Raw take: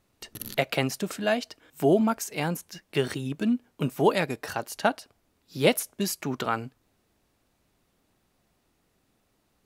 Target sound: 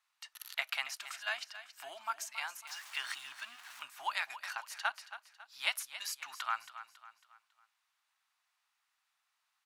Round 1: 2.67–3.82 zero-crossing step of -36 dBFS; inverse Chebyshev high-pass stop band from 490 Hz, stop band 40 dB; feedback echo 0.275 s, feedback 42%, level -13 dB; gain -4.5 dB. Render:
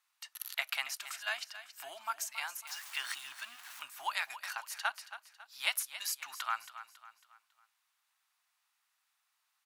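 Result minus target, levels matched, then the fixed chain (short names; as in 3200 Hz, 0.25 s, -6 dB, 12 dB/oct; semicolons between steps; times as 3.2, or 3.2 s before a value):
8000 Hz band +3.0 dB
2.67–3.82 zero-crossing step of -36 dBFS; inverse Chebyshev high-pass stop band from 490 Hz, stop band 40 dB; high shelf 9200 Hz -10.5 dB; feedback echo 0.275 s, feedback 42%, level -13 dB; gain -4.5 dB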